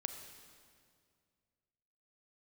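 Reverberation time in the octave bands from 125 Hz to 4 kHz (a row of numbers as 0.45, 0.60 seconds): 2.7, 2.4, 2.3, 2.0, 1.9, 1.8 seconds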